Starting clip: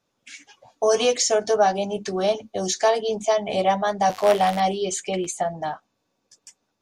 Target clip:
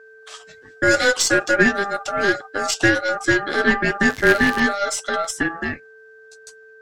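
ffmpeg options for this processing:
-af "aeval=exprs='val(0)+0.00501*sin(2*PI*560*n/s)':c=same,aeval=exprs='val(0)*sin(2*PI*1000*n/s)':c=same,aeval=exprs='0.422*(cos(1*acos(clip(val(0)/0.422,-1,1)))-cos(1*PI/2))+0.0188*(cos(6*acos(clip(val(0)/0.422,-1,1)))-cos(6*PI/2))':c=same,volume=5.5dB"

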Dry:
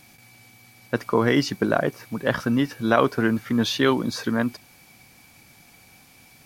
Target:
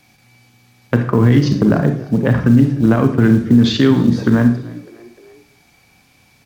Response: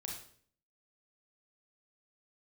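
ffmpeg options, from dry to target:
-filter_complex "[0:a]afwtdn=0.0251,acrossover=split=240[a][b];[b]acompressor=threshold=-34dB:ratio=10[c];[a][c]amix=inputs=2:normalize=0,acrusher=bits=8:mode=log:mix=0:aa=0.000001,asplit=4[d][e][f][g];[e]adelay=301,afreqshift=58,volume=-22.5dB[h];[f]adelay=602,afreqshift=116,volume=-28.5dB[i];[g]adelay=903,afreqshift=174,volume=-34.5dB[j];[d][h][i][j]amix=inputs=4:normalize=0,asplit=2[k][l];[1:a]atrim=start_sample=2205,lowpass=7.9k[m];[l][m]afir=irnorm=-1:irlink=0,volume=3.5dB[n];[k][n]amix=inputs=2:normalize=0,alimiter=level_in=11.5dB:limit=-1dB:release=50:level=0:latency=1,volume=-1dB"

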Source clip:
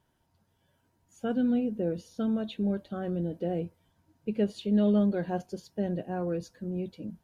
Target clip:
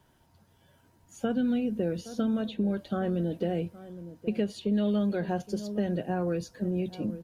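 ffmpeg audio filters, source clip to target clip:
-filter_complex "[0:a]asplit=2[a][b];[b]adelay=816.3,volume=-20dB,highshelf=f=4k:g=-18.4[c];[a][c]amix=inputs=2:normalize=0,acrossover=split=160|1400[d][e][f];[d]acompressor=threshold=-47dB:ratio=4[g];[e]acompressor=threshold=-37dB:ratio=4[h];[f]acompressor=threshold=-53dB:ratio=4[i];[g][h][i]amix=inputs=3:normalize=0,volume=8.5dB"

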